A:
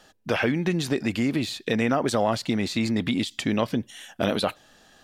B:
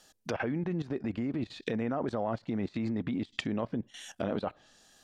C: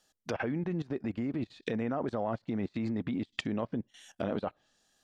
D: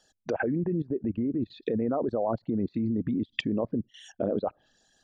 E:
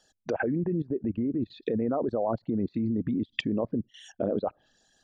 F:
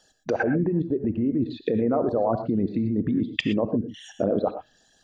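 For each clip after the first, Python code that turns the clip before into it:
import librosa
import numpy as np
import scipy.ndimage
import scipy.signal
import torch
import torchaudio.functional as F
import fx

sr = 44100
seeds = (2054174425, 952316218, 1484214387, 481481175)

y1 = fx.env_lowpass_down(x, sr, base_hz=1300.0, full_db=-23.5)
y1 = fx.bass_treble(y1, sr, bass_db=0, treble_db=11)
y1 = fx.level_steps(y1, sr, step_db=15)
y1 = y1 * 10.0 ** (-1.5 / 20.0)
y2 = fx.upward_expand(y1, sr, threshold_db=-51.0, expansion=1.5)
y3 = fx.envelope_sharpen(y2, sr, power=2.0)
y3 = y3 * 10.0 ** (5.0 / 20.0)
y4 = y3
y5 = fx.rev_gated(y4, sr, seeds[0], gate_ms=140, shape='rising', drr_db=8.5)
y5 = y5 * 10.0 ** (4.5 / 20.0)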